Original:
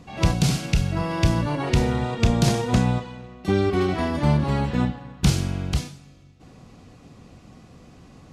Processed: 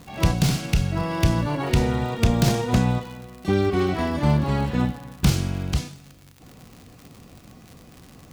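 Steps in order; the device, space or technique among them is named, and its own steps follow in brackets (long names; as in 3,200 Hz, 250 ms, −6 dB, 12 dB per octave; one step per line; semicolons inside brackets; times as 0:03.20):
record under a worn stylus (stylus tracing distortion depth 0.069 ms; surface crackle 94 per second −33 dBFS; white noise bed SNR 41 dB)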